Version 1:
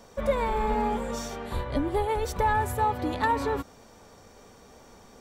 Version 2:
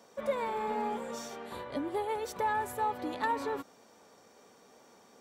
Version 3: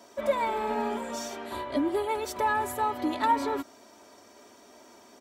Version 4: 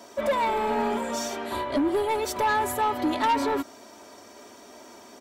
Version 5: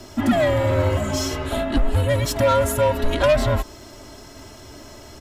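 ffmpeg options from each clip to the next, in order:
ffmpeg -i in.wav -af "highpass=220,volume=-6dB" out.wav
ffmpeg -i in.wav -af "aecho=1:1:3.1:0.74,volume=4.5dB" out.wav
ffmpeg -i in.wav -af "asoftclip=type=tanh:threshold=-24.5dB,volume=6dB" out.wav
ffmpeg -i in.wav -af "afreqshift=-320,volume=6.5dB" out.wav

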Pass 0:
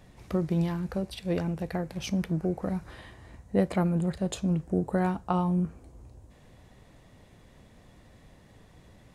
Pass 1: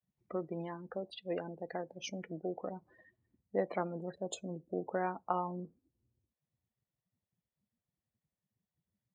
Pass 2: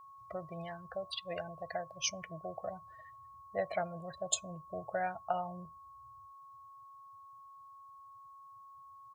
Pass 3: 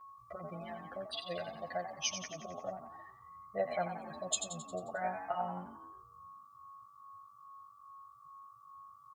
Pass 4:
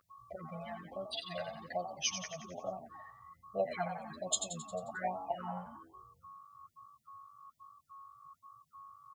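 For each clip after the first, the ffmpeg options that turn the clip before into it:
ffmpeg -i in.wav -af "afftdn=noise_reduction=36:noise_floor=-39,highpass=400,volume=-3.5dB" out.wav
ffmpeg -i in.wav -af "firequalizer=gain_entry='entry(110,0);entry(230,-28);entry(440,-24);entry(640,-4);entry(1000,-24);entry(1500,-9);entry(5200,0)':delay=0.05:min_phase=1,aeval=exprs='val(0)+0.000631*sin(2*PI*1100*n/s)':channel_layout=same,volume=12dB" out.wav
ffmpeg -i in.wav -filter_complex "[0:a]asplit=8[link_01][link_02][link_03][link_04][link_05][link_06][link_07][link_08];[link_02]adelay=89,afreqshift=49,volume=-8dB[link_09];[link_03]adelay=178,afreqshift=98,volume=-13.2dB[link_10];[link_04]adelay=267,afreqshift=147,volume=-18.4dB[link_11];[link_05]adelay=356,afreqshift=196,volume=-23.6dB[link_12];[link_06]adelay=445,afreqshift=245,volume=-28.8dB[link_13];[link_07]adelay=534,afreqshift=294,volume=-34dB[link_14];[link_08]adelay=623,afreqshift=343,volume=-39.2dB[link_15];[link_01][link_09][link_10][link_11][link_12][link_13][link_14][link_15]amix=inputs=8:normalize=0,asplit=2[link_16][link_17];[link_17]adelay=9.6,afreqshift=2.4[link_18];[link_16][link_18]amix=inputs=2:normalize=1,volume=2dB" out.wav
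ffmpeg -i in.wav -af "afftfilt=real='re*(1-between(b*sr/1024,290*pow(2000/290,0.5+0.5*sin(2*PI*1.2*pts/sr))/1.41,290*pow(2000/290,0.5+0.5*sin(2*PI*1.2*pts/sr))*1.41))':imag='im*(1-between(b*sr/1024,290*pow(2000/290,0.5+0.5*sin(2*PI*1.2*pts/sr))/1.41,290*pow(2000/290,0.5+0.5*sin(2*PI*1.2*pts/sr))*1.41))':win_size=1024:overlap=0.75,volume=1dB" out.wav

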